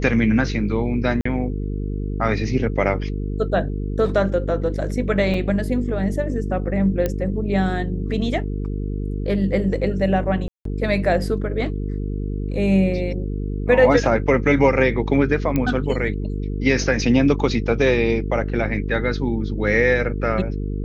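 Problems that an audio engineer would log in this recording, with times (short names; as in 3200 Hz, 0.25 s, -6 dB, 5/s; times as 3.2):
buzz 50 Hz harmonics 9 -25 dBFS
1.21–1.25 gap 44 ms
5.34 gap 2.7 ms
7.06 pop -9 dBFS
10.48–10.65 gap 0.173 s
15.56 pop -9 dBFS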